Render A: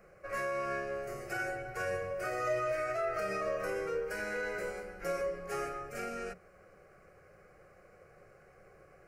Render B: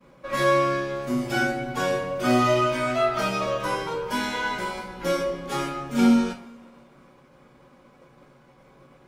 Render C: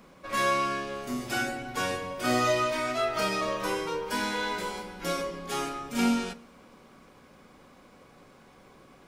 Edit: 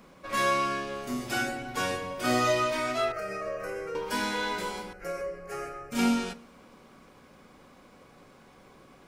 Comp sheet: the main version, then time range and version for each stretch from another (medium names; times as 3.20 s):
C
3.12–3.95 s: from A
4.93–5.92 s: from A
not used: B